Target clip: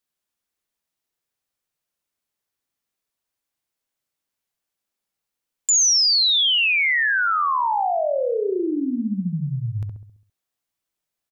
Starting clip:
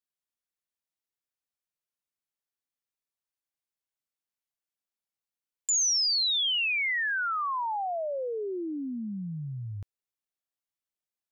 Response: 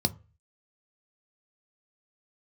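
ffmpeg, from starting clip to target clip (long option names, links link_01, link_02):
-filter_complex "[0:a]asplit=2[link_01][link_02];[link_02]adelay=67,lowpass=frequency=1000:poles=1,volume=-3.5dB,asplit=2[link_03][link_04];[link_04]adelay=67,lowpass=frequency=1000:poles=1,volume=0.52,asplit=2[link_05][link_06];[link_06]adelay=67,lowpass=frequency=1000:poles=1,volume=0.52,asplit=2[link_07][link_08];[link_08]adelay=67,lowpass=frequency=1000:poles=1,volume=0.52,asplit=2[link_09][link_10];[link_10]adelay=67,lowpass=frequency=1000:poles=1,volume=0.52,asplit=2[link_11][link_12];[link_12]adelay=67,lowpass=frequency=1000:poles=1,volume=0.52,asplit=2[link_13][link_14];[link_14]adelay=67,lowpass=frequency=1000:poles=1,volume=0.52[link_15];[link_01][link_03][link_05][link_07][link_09][link_11][link_13][link_15]amix=inputs=8:normalize=0,volume=8.5dB"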